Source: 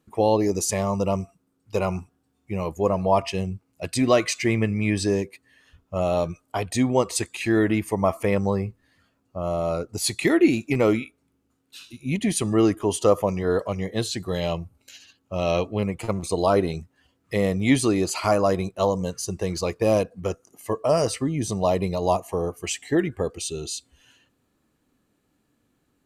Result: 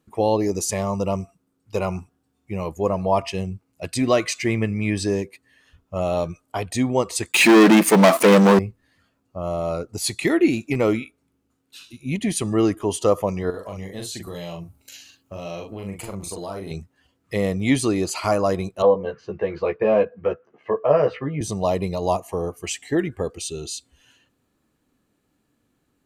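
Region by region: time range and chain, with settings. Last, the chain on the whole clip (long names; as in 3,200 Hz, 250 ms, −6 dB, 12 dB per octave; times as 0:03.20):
0:07.32–0:08.59: leveller curve on the samples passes 5 + linear-phase brick-wall high-pass 150 Hz
0:13.50–0:16.71: high-shelf EQ 8,900 Hz +11.5 dB + downward compressor 4 to 1, threshold −31 dBFS + double-tracking delay 41 ms −4 dB
0:18.82–0:21.41: loudspeaker in its box 140–2,700 Hz, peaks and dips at 260 Hz −8 dB, 480 Hz +5 dB, 1,600 Hz +6 dB + double-tracking delay 14 ms −3 dB
whole clip: no processing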